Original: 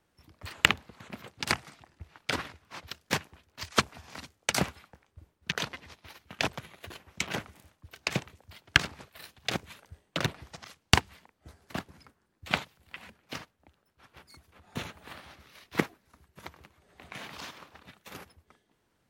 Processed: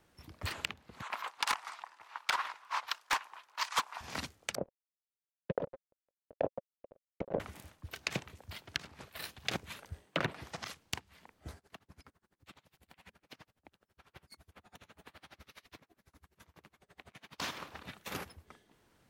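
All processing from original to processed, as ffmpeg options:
ffmpeg -i in.wav -filter_complex "[0:a]asettb=1/sr,asplit=3[link_01][link_02][link_03];[link_01]atrim=end=1.024[link_04];[link_02]atrim=start=1.02:end=4.01,asetpts=PTS-STARTPTS,afade=type=in:duration=0.004:curve=qsin,afade=type=out:start_time=2.986:duration=0.004:curve=qsin,highpass=frequency=990:width_type=q:width=3.4,highshelf=frequency=11000:gain=-6.5,asoftclip=type=hard:threshold=-20dB[link_05];[link_03]atrim=start=4.006[link_06];[link_04][link_05]acrossfade=duration=0.004:curve1=hsin:curve2=qsin[link_07];[link_07][link_06]acrossfade=duration=0.004:curve1=qsin:curve2=hsin,asettb=1/sr,asplit=3[link_08][link_09][link_10];[link_08]atrim=end=4.554[link_11];[link_09]atrim=start=4.55:end=7.4,asetpts=PTS-STARTPTS,afade=type=in:duration=0.004:curve=qsin,afade=type=out:start_time=2.846:duration=0.004:curve=qsin,aeval=exprs='sgn(val(0))*max(abs(val(0))-0.0168,0)':channel_layout=same,lowpass=frequency=550:width_type=q:width=4.8[link_12];[link_10]atrim=start=7.396[link_13];[link_11][link_12]acrossfade=duration=0.004:curve1=hsin:curve2=qsin[link_14];[link_14][link_13]acrossfade=duration=0.004:curve1=qsin:curve2=hsin,asettb=1/sr,asplit=3[link_15][link_16][link_17];[link_15]atrim=end=10.064[link_18];[link_16]atrim=start=10.06:end=10.61,asetpts=PTS-STARTPTS,afade=type=in:duration=0.004:curve=qsin,afade=type=out:start_time=0.546:duration=0.004:curve=qsin,acrossover=split=2800[link_19][link_20];[link_20]acompressor=threshold=-47dB:ratio=4:attack=1:release=60[link_21];[link_19][link_21]amix=inputs=2:normalize=0,highpass=frequency=160:poles=1[link_22];[link_17]atrim=start=10.606[link_23];[link_18][link_22]acrossfade=duration=0.004:curve1=hsin:curve2=qsin[link_24];[link_24][link_23]acrossfade=duration=0.004:curve1=qsin:curve2=hsin,asettb=1/sr,asplit=3[link_25][link_26][link_27];[link_25]atrim=end=11.584[link_28];[link_26]atrim=start=11.58:end=17.4,asetpts=PTS-STARTPTS,afade=type=in:duration=0.004:curve=qsin,afade=type=out:start_time=5.816:duration=0.004:curve=qsin,acompressor=threshold=-50dB:ratio=12:attack=3.2:release=140:knee=1:detection=peak,aeval=exprs='val(0)*pow(10,-29*(0.5-0.5*cos(2*PI*12*n/s))/20)':channel_layout=same[link_29];[link_27]atrim=start=17.396[link_30];[link_28][link_29]acrossfade=duration=0.004:curve1=hsin:curve2=qsin[link_31];[link_31][link_30]acrossfade=duration=0.004:curve1=qsin:curve2=hsin,acompressor=threshold=-33dB:ratio=10,alimiter=limit=-18dB:level=0:latency=1:release=483,volume=4.5dB" out.wav

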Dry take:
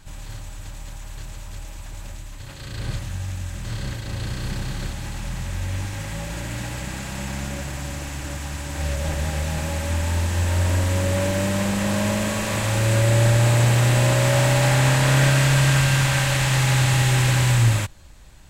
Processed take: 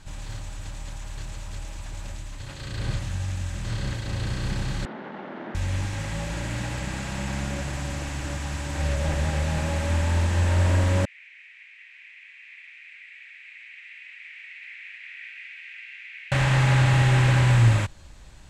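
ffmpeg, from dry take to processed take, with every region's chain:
ffmpeg -i in.wav -filter_complex "[0:a]asettb=1/sr,asplit=3[link_01][link_02][link_03];[link_01]atrim=end=4.854[link_04];[link_02]atrim=start=4.85:end=5.55,asetpts=PTS-STARTPTS,afade=type=in:duration=0.004:curve=qsin,afade=type=out:start_time=0.696:duration=0.004:curve=qsin,bandreject=frequency=60:width_type=h:width=6,bandreject=frequency=120:width_type=h:width=6,bandreject=frequency=180:width_type=h:width=6,bandreject=frequency=240:width_type=h:width=6,bandreject=frequency=300:width_type=h:width=6,bandreject=frequency=360:width_type=h:width=6,bandreject=frequency=420:width_type=h:width=6,bandreject=frequency=480:width_type=h:width=6,bandreject=frequency=540:width_type=h:width=6,bandreject=frequency=600:width_type=h:width=6,aeval=exprs='0.0266*(abs(mod(val(0)/0.0266+3,4)-2)-1)':channel_layout=same,highpass=frequency=190:width=0.5412,highpass=frequency=190:width=1.3066,equalizer=frequency=210:width_type=q:width=4:gain=7,equalizer=frequency=370:width_type=q:width=4:gain=5,equalizer=frequency=600:width_type=q:width=4:gain=8,equalizer=frequency=870:width_type=q:width=4:gain=6,equalizer=frequency=1400:width_type=q:width=4:gain=3,equalizer=frequency=2500:width_type=q:width=4:gain=-8,lowpass=frequency=2600:width=0.5412,lowpass=frequency=2600:width=1.3066[link_05];[link_03]atrim=start=5.546[link_06];[link_04][link_05]acrossfade=duration=0.004:curve1=hsin:curve2=qsin[link_07];[link_07][link_06]acrossfade=duration=0.004:curve1=qsin:curve2=hsin,asettb=1/sr,asplit=3[link_08][link_09][link_10];[link_08]atrim=end=11.054[link_11];[link_09]atrim=start=11.05:end=16.32,asetpts=PTS-STARTPTS,afade=type=in:duration=0.004:curve=qsin,afade=type=out:start_time=5.266:duration=0.004:curve=qsin,asuperpass=centerf=2200:order=4:qfactor=3.4,aderivative[link_12];[link_10]atrim=start=16.316[link_13];[link_11][link_12]acrossfade=duration=0.004:curve1=hsin:curve2=qsin[link_14];[link_14][link_13]acrossfade=duration=0.004:curve1=qsin:curve2=hsin,lowpass=8700,acrossover=split=2800[link_15][link_16];[link_16]acompressor=threshold=-38dB:ratio=4:attack=1:release=60[link_17];[link_15][link_17]amix=inputs=2:normalize=0" out.wav

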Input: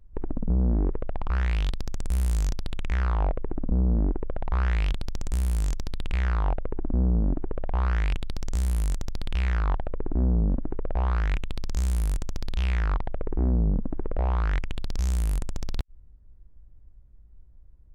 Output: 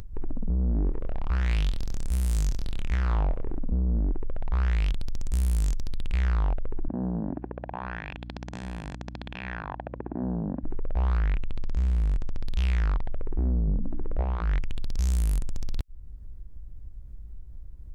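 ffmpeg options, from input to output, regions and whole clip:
ffmpeg -i in.wav -filter_complex "[0:a]asettb=1/sr,asplit=3[link_01][link_02][link_03];[link_01]atrim=end=0.724[link_04];[link_02]atrim=start=0.72:end=3.6,asetpts=PTS-STARTPTS,afade=type=in:duration=0.004:curve=qsin,afade=type=out:start_time=2.876:duration=0.004:curve=qsin,asplit=2[link_05][link_06];[link_06]adelay=26,volume=-10dB[link_07];[link_05][link_07]amix=inputs=2:normalize=0,atrim=end_sample=127008,aecho=1:1:120:0.0631,atrim=end_sample=127008[link_08];[link_03]atrim=start=3.596[link_09];[link_04][link_08]acrossfade=duration=0.004:curve1=hsin:curve2=qsin[link_10];[link_10][link_09]acrossfade=duration=0.004:curve1=qsin:curve2=hsin,asettb=1/sr,asplit=3[link_11][link_12][link_13];[link_11]atrim=end=6.884[link_14];[link_12]atrim=start=6.88:end=10.64,asetpts=PTS-STARTPTS,afade=type=in:duration=0.004:curve=qsin,afade=type=out:start_time=3.756:duration=0.004:curve=qsin,highpass=260,lowpass=2400,aecho=1:1:1.2:0.4,atrim=end_sample=165816,aeval=exprs='val(0)+0.00501*(sin(2*PI*60*n/s)+sin(2*PI*2*60*n/s)/2+sin(2*PI*3*60*n/s)/3+sin(2*PI*4*60*n/s)/4+sin(2*PI*5*60*n/s)/5)':channel_layout=same[link_15];[link_13]atrim=start=10.636[link_16];[link_14][link_15]acrossfade=duration=0.004:curve1=hsin:curve2=qsin[link_17];[link_17][link_16]acrossfade=duration=0.004:curve1=qsin:curve2=hsin,asettb=1/sr,asplit=3[link_18][link_19][link_20];[link_18]atrim=end=11.174[link_21];[link_19]atrim=start=11.17:end=12.48,asetpts=PTS-STARTPTS,afade=type=in:duration=0.004:curve=qsin,afade=type=out:start_time=1.306:duration=0.004:curve=qsin,lowpass=6800,acrossover=split=2900[link_22][link_23];[link_23]acompressor=threshold=-55dB:ratio=4:attack=1:release=60[link_24];[link_22][link_24]amix=inputs=2:normalize=0[link_25];[link_20]atrim=start=12.476[link_26];[link_21][link_25]acrossfade=duration=0.004:curve1=hsin:curve2=qsin[link_27];[link_27][link_26]acrossfade=duration=0.004:curve1=qsin:curve2=hsin,asettb=1/sr,asplit=3[link_28][link_29][link_30];[link_28]atrim=end=13.664[link_31];[link_29]atrim=start=13.66:end=14.61,asetpts=PTS-STARTPTS,afade=type=in:duration=0.004:curve=qsin,afade=type=out:start_time=0.946:duration=0.004:curve=qsin,highshelf=frequency=5000:gain=-11,bandreject=frequency=60:width_type=h:width=6,bandreject=frequency=120:width_type=h:width=6,bandreject=frequency=180:width_type=h:width=6,bandreject=frequency=240:width_type=h:width=6,bandreject=frequency=300:width_type=h:width=6[link_32];[link_30]atrim=start=14.606[link_33];[link_31][link_32]acrossfade=duration=0.004:curve1=hsin:curve2=qsin[link_34];[link_34][link_33]acrossfade=duration=0.004:curve1=qsin:curve2=hsin,equalizer=frequency=900:width=0.41:gain=-5,alimiter=level_in=2.5dB:limit=-24dB:level=0:latency=1:release=21,volume=-2.5dB,acompressor=mode=upward:threshold=-38dB:ratio=2.5,volume=6dB" out.wav

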